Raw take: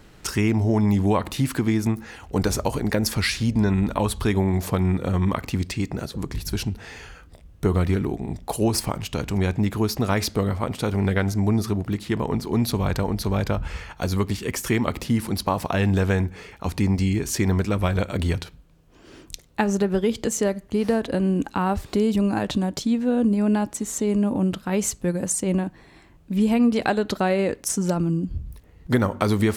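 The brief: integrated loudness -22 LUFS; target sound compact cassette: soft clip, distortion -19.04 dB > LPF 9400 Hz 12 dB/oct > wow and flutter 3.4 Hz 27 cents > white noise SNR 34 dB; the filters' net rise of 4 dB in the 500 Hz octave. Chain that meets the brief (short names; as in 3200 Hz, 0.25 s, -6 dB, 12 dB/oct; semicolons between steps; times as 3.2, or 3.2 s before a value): bell 500 Hz +5 dB; soft clip -12.5 dBFS; LPF 9400 Hz 12 dB/oct; wow and flutter 3.4 Hz 27 cents; white noise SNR 34 dB; gain +1.5 dB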